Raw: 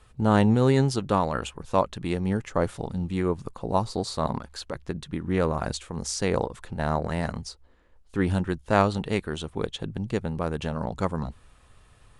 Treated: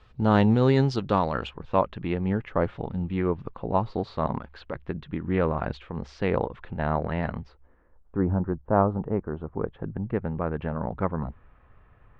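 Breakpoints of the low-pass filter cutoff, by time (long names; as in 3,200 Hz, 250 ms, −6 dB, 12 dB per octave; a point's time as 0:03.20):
low-pass filter 24 dB per octave
0:01.24 4,900 Hz
0:01.84 3,000 Hz
0:07.30 3,000 Hz
0:08.23 1,200 Hz
0:09.26 1,200 Hz
0:10.30 2,100 Hz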